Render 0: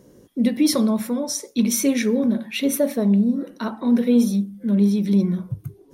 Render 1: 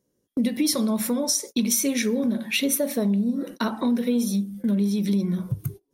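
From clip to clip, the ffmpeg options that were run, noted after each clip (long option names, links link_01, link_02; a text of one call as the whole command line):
ffmpeg -i in.wav -af "agate=range=-29dB:threshold=-38dB:ratio=16:detection=peak,highshelf=frequency=3200:gain=8.5,acompressor=threshold=-27dB:ratio=4,volume=5dB" out.wav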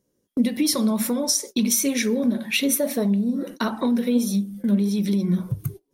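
ffmpeg -i in.wav -af "flanger=delay=0.3:depth=5.5:regen=75:speed=1.6:shape=triangular,volume=6dB" out.wav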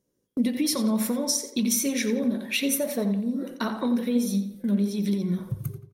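ffmpeg -i in.wav -filter_complex "[0:a]asplit=2[link_01][link_02];[link_02]adelay=87,lowpass=frequency=3800:poles=1,volume=-9dB,asplit=2[link_03][link_04];[link_04]adelay=87,lowpass=frequency=3800:poles=1,volume=0.44,asplit=2[link_05][link_06];[link_06]adelay=87,lowpass=frequency=3800:poles=1,volume=0.44,asplit=2[link_07][link_08];[link_08]adelay=87,lowpass=frequency=3800:poles=1,volume=0.44,asplit=2[link_09][link_10];[link_10]adelay=87,lowpass=frequency=3800:poles=1,volume=0.44[link_11];[link_01][link_03][link_05][link_07][link_09][link_11]amix=inputs=6:normalize=0,volume=-4dB" out.wav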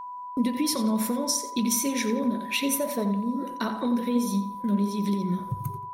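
ffmpeg -i in.wav -af "aeval=exprs='val(0)+0.02*sin(2*PI*990*n/s)':channel_layout=same,volume=-1dB" out.wav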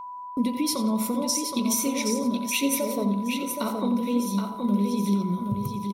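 ffmpeg -i in.wav -filter_complex "[0:a]asuperstop=centerf=1700:order=4:qfactor=3,asplit=2[link_01][link_02];[link_02]aecho=0:1:772|1544|2316:0.531|0.0956|0.0172[link_03];[link_01][link_03]amix=inputs=2:normalize=0" out.wav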